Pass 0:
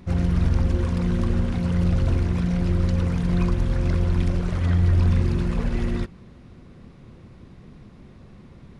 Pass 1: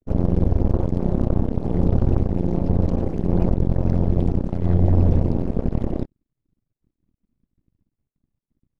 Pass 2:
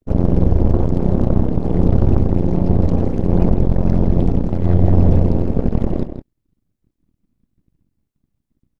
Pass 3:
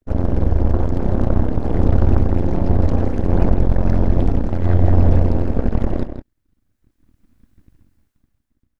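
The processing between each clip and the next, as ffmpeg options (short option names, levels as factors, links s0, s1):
-af "afwtdn=0.0355,aeval=exprs='0.355*(cos(1*acos(clip(val(0)/0.355,-1,1)))-cos(1*PI/2))+0.0282*(cos(5*acos(clip(val(0)/0.355,-1,1)))-cos(5*PI/2))+0.0794*(cos(6*acos(clip(val(0)/0.355,-1,1)))-cos(6*PI/2))+0.0708*(cos(7*acos(clip(val(0)/0.355,-1,1)))-cos(7*PI/2))':c=same"
-filter_complex "[0:a]asplit=2[s0][s1];[s1]adelay=163.3,volume=0.355,highshelf=f=4000:g=-3.67[s2];[s0][s2]amix=inputs=2:normalize=0,volume=1.68"
-af "equalizer=f=160:t=o:w=0.67:g=-9,equalizer=f=400:t=o:w=0.67:g=-4,equalizer=f=1600:t=o:w=0.67:g=6,dynaudnorm=f=170:g=11:m=5.62,volume=0.891"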